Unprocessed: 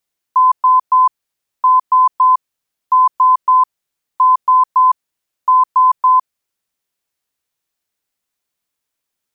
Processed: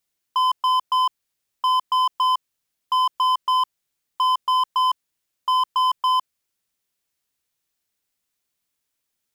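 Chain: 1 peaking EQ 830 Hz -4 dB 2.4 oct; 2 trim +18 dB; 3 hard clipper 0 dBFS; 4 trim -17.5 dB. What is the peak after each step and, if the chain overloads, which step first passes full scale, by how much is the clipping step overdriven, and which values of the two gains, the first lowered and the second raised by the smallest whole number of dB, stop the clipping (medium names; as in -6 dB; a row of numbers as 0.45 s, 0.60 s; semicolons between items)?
-10.0 dBFS, +8.0 dBFS, 0.0 dBFS, -17.5 dBFS; step 2, 8.0 dB; step 2 +10 dB, step 4 -9.5 dB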